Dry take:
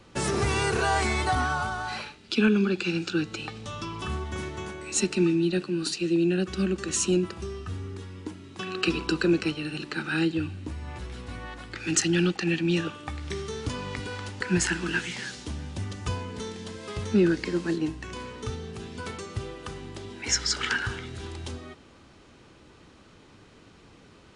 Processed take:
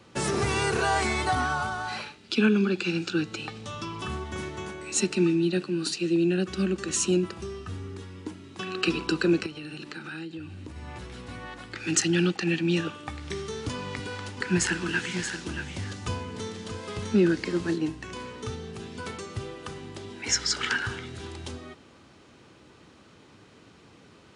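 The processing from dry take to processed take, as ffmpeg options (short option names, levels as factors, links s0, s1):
-filter_complex "[0:a]asettb=1/sr,asplit=3[s0][s1][s2];[s0]atrim=end=9.464[s3];[s1]atrim=start=9.46:end=10.76,asetpts=PTS-STARTPTS,afade=t=in:d=0.004:c=qsin,afade=t=out:st=1.296:d=0.004:c=qsin,acompressor=threshold=0.0178:ratio=6:attack=3.2:release=140:knee=1:detection=peak[s4];[s2]atrim=start=10.756[s5];[s3][s4]acrossfade=d=0.004:c1=hsin:c2=qsin[s6];[s6][s5]acrossfade=d=0.004:c1=qsin:c2=hsin,asettb=1/sr,asplit=3[s7][s8][s9];[s7]atrim=end=13.744[s10];[s8]atrim=start=13.74:end=17.74,asetpts=PTS-STARTPTS,afade=t=in:d=0.004:c=qsin,afade=t=out:st=3.996:d=0.004:c=qsin,aecho=1:1:629:0.376,atrim=end_sample=176400[s11];[s9]atrim=start=17.736[s12];[s10][s11]acrossfade=d=0.004:c1=hsin:c2=qsin[s13];[s13][s12]acrossfade=d=0.004:c1=qsin:c2=hsin,highpass=84"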